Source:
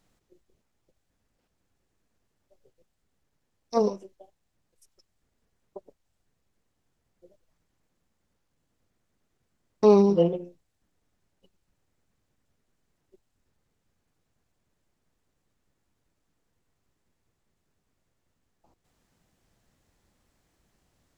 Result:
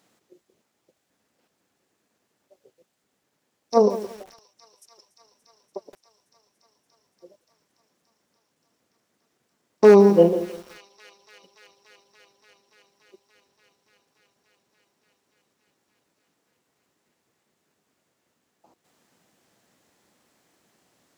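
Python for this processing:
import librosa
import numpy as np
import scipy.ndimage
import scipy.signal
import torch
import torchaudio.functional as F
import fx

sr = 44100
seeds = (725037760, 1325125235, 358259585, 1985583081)

p1 = 10.0 ** (-9.5 / 20.0) * (np.abs((x / 10.0 ** (-9.5 / 20.0) + 3.0) % 4.0 - 2.0) - 1.0)
p2 = p1 + fx.echo_wet_highpass(p1, sr, ms=288, feedback_pct=84, hz=2200.0, wet_db=-16.5, dry=0)
p3 = fx.dynamic_eq(p2, sr, hz=3100.0, q=0.78, threshold_db=-50.0, ratio=4.0, max_db=-7)
p4 = scipy.signal.sosfilt(scipy.signal.butter(2, 220.0, 'highpass', fs=sr, output='sos'), p3)
p5 = fx.echo_crushed(p4, sr, ms=169, feedback_pct=35, bits=7, wet_db=-14)
y = F.gain(torch.from_numpy(p5), 7.5).numpy()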